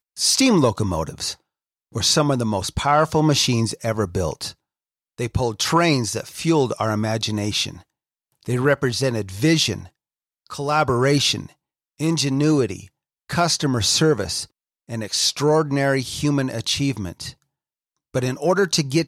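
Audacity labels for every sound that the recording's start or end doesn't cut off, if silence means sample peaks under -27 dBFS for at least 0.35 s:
1.950000	4.500000	sound
5.190000	7.730000	sound
8.480000	9.800000	sound
10.520000	11.460000	sound
12.000000	12.800000	sound
13.300000	14.440000	sound
14.900000	17.290000	sound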